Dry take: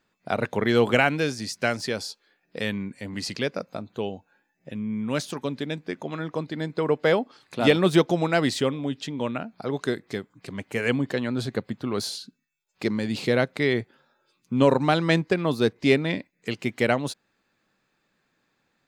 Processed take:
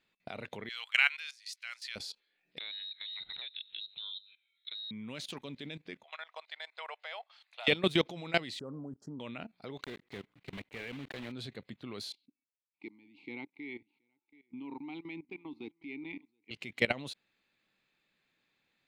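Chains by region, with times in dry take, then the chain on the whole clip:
0.69–1.96 s: high-pass 1.2 kHz 24 dB/octave + three bands expanded up and down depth 40%
2.58–4.91 s: hum notches 50/100/150/200/250/300/350/400 Hz + compression, threshold -35 dBFS + frequency inversion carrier 4 kHz
6.03–7.68 s: elliptic high-pass 660 Hz, stop band 70 dB + treble shelf 10 kHz -7.5 dB
8.59–9.20 s: elliptic band-stop 1.4–5.4 kHz + treble shelf 2.1 kHz -11 dB
9.83–11.33 s: block-companded coder 3-bit + low-pass 2.1 kHz 6 dB/octave
12.12–16.51 s: vowel filter u + delay 724 ms -23 dB
whole clip: high-order bell 2.9 kHz +9 dB 1.3 oct; level held to a coarse grid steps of 18 dB; trim -6.5 dB

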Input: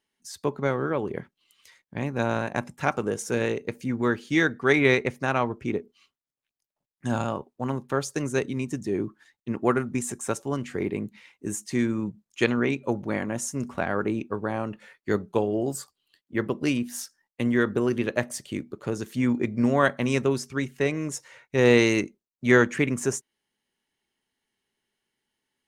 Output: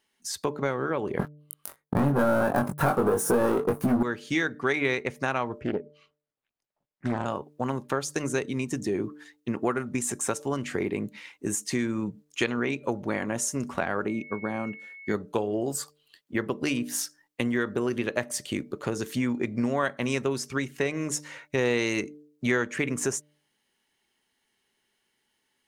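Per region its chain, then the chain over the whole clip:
1.19–4.03 s: waveshaping leveller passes 5 + high-order bell 3.8 kHz -15.5 dB 2.3 oct + doubling 21 ms -4 dB
5.60–7.26 s: low-pass 1.3 kHz 6 dB/octave + loudspeaker Doppler distortion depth 0.45 ms
14.07–15.13 s: peaking EQ 210 Hz +7.5 dB 1 oct + whistle 2.2 kHz -37 dBFS + upward expansion, over -34 dBFS
whole clip: bass shelf 360 Hz -5 dB; de-hum 148.6 Hz, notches 4; compression 3:1, threshold -33 dBFS; trim +7 dB

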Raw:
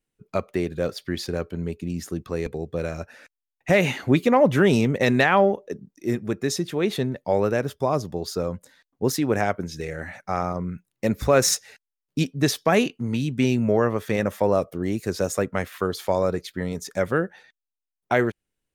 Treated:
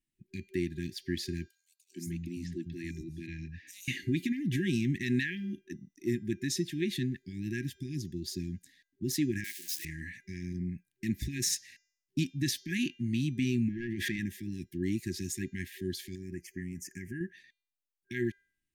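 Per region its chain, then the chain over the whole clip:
1.48–3.88 s: high-pass 79 Hz + three bands offset in time highs, mids, lows 440/540 ms, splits 190/5000 Hz
9.44–9.85 s: zero-crossing glitches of -22.5 dBFS + high-pass 880 Hz
13.68–14.19 s: overdrive pedal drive 14 dB, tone 1 kHz, clips at -8 dBFS + level flattener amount 70%
16.15–17.21 s: compression 2:1, threshold -30 dBFS + Butterworth band-stop 3.8 kHz, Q 1.3
whole clip: peak limiter -14 dBFS; FFT band-reject 380–1600 Hz; de-hum 400.2 Hz, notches 18; trim -5.5 dB

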